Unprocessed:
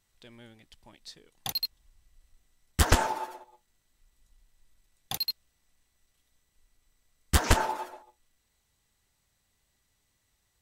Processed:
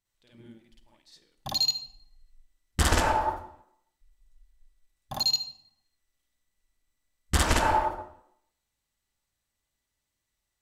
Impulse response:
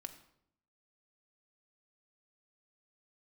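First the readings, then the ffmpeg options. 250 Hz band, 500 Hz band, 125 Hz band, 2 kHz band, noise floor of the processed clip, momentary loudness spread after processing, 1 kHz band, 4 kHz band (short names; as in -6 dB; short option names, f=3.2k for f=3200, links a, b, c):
+1.5 dB, +2.5 dB, 0.0 dB, +2.0 dB, -83 dBFS, 17 LU, +4.5 dB, +5.5 dB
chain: -filter_complex "[0:a]afwtdn=0.0126,asplit=2[a][b];[1:a]atrim=start_sample=2205,lowshelf=f=320:g=-5,adelay=53[c];[b][c]afir=irnorm=-1:irlink=0,volume=8.5dB[d];[a][d]amix=inputs=2:normalize=0,alimiter=limit=-16dB:level=0:latency=1:release=189,volume=3dB"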